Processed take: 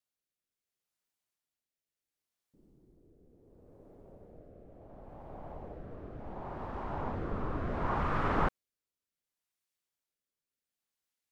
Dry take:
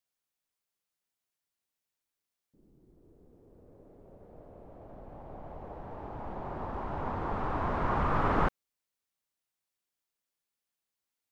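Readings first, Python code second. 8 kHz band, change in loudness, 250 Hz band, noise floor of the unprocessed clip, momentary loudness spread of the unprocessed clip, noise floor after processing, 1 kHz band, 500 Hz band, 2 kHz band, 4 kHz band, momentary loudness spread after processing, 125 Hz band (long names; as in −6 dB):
can't be measured, −3.0 dB, −2.0 dB, below −85 dBFS, 22 LU, below −85 dBFS, −4.0 dB, −2.5 dB, −2.0 dB, −1.5 dB, 24 LU, −2.0 dB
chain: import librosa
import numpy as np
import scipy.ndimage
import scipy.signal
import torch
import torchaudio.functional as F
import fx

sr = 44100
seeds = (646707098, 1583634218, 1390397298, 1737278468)

y = fx.rotary(x, sr, hz=0.7)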